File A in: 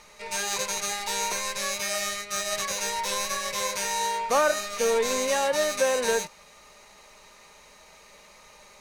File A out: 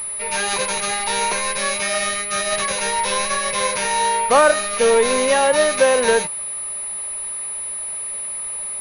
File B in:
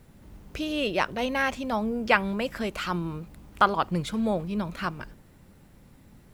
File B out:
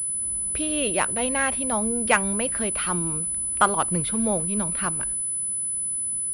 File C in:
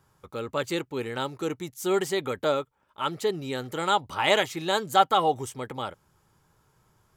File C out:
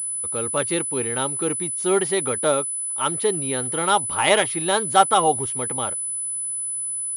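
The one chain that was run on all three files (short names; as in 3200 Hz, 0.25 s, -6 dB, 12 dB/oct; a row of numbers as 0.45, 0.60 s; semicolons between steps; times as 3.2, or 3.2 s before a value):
pulse-width modulation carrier 10000 Hz; normalise peaks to -3 dBFS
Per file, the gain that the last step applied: +9.0, +1.0, +4.5 dB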